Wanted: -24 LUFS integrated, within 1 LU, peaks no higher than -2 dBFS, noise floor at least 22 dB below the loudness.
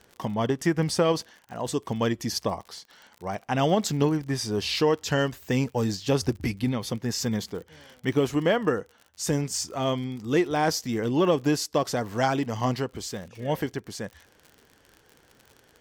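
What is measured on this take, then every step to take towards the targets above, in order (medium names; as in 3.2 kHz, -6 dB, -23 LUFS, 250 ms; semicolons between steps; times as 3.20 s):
tick rate 53 per s; loudness -27.0 LUFS; peak level -9.5 dBFS; loudness target -24.0 LUFS
-> de-click; trim +3 dB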